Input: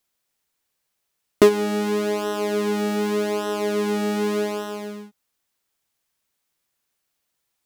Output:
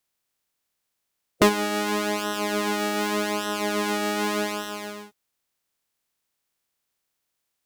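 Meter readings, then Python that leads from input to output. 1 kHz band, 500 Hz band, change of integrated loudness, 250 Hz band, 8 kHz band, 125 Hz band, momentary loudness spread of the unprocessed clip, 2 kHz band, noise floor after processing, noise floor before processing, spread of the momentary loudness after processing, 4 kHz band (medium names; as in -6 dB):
+2.5 dB, -6.0 dB, -2.5 dB, -3.0 dB, +3.5 dB, no reading, 12 LU, +4.0 dB, -80 dBFS, -77 dBFS, 10 LU, +3.5 dB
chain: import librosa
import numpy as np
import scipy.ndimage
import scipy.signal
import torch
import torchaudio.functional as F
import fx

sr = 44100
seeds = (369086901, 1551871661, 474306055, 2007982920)

p1 = fx.spec_clip(x, sr, under_db=14)
p2 = np.clip(p1, -10.0 ** (-17.5 / 20.0), 10.0 ** (-17.5 / 20.0))
p3 = p1 + (p2 * librosa.db_to_amplitude(-7.0))
y = p3 * librosa.db_to_amplitude(-5.5)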